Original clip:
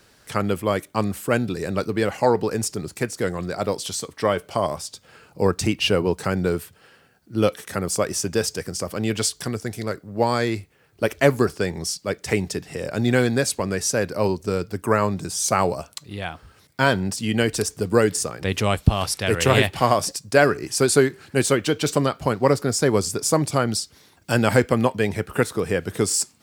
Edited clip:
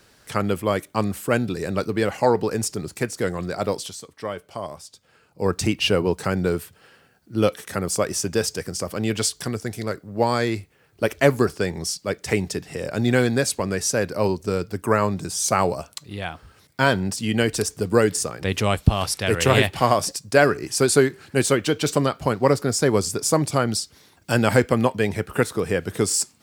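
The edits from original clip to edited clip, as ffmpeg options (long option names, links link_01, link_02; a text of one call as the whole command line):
ffmpeg -i in.wav -filter_complex "[0:a]asplit=3[link_01][link_02][link_03];[link_01]atrim=end=3.94,asetpts=PTS-STARTPTS,afade=type=out:start_time=3.78:duration=0.16:silence=0.354813[link_04];[link_02]atrim=start=3.94:end=5.37,asetpts=PTS-STARTPTS,volume=-9dB[link_05];[link_03]atrim=start=5.37,asetpts=PTS-STARTPTS,afade=type=in:duration=0.16:silence=0.354813[link_06];[link_04][link_05][link_06]concat=n=3:v=0:a=1" out.wav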